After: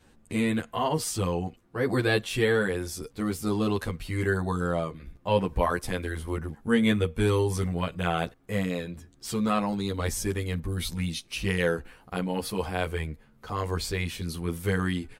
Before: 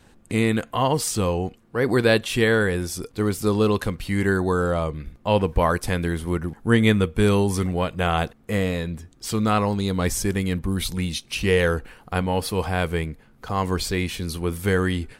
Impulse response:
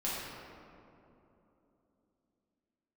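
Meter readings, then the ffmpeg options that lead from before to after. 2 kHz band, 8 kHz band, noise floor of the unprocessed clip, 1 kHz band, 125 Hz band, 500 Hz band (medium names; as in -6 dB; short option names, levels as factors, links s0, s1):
-5.5 dB, -5.5 dB, -54 dBFS, -5.5 dB, -5.5 dB, -6.0 dB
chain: -filter_complex "[0:a]asplit=2[s0][s1];[s1]adelay=10.6,afreqshift=0.3[s2];[s0][s2]amix=inputs=2:normalize=1,volume=0.75"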